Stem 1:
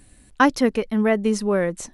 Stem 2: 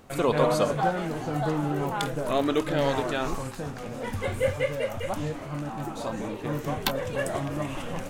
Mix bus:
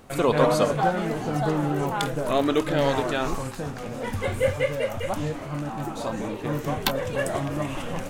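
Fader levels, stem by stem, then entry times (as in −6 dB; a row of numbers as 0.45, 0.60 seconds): −16.5, +2.5 decibels; 0.00, 0.00 seconds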